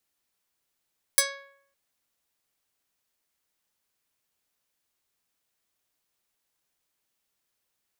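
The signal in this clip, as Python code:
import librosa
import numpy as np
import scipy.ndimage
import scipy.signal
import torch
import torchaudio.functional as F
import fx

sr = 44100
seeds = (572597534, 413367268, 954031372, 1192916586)

y = fx.pluck(sr, length_s=0.56, note=73, decay_s=0.68, pick=0.42, brightness='medium')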